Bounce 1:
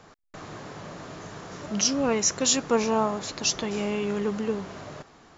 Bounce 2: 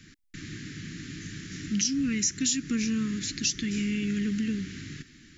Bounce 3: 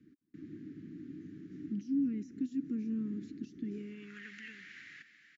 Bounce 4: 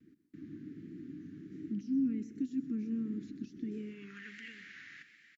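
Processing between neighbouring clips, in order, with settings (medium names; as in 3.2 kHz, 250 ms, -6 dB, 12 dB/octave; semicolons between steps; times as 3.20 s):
Chebyshev band-stop 300–1800 Hz, order 3; dynamic bell 3 kHz, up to -3 dB, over -42 dBFS, Q 0.89; compression 4:1, threshold -29 dBFS, peak gain reduction 8.5 dB; trim +4.5 dB
peak limiter -22.5 dBFS, peak gain reduction 9.5 dB; feedback delay 208 ms, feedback 58%, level -20.5 dB; band-pass sweep 300 Hz -> 1.9 kHz, 3.67–4.29 s; trim -1 dB
vibrato 1.4 Hz 56 cents; delay 127 ms -14 dB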